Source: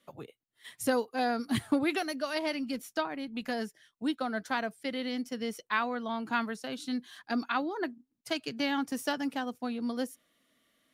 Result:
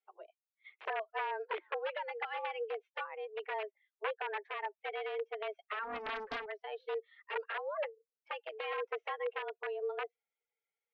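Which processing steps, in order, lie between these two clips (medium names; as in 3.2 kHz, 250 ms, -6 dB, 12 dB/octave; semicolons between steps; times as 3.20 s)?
expander on every frequency bin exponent 1.5; compression 16:1, threshold -35 dBFS, peak gain reduction 13 dB; integer overflow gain 32.5 dB; mistuned SSB +210 Hz 210–2600 Hz; 5.83–6.46 s: loudspeaker Doppler distortion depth 0.4 ms; trim +3.5 dB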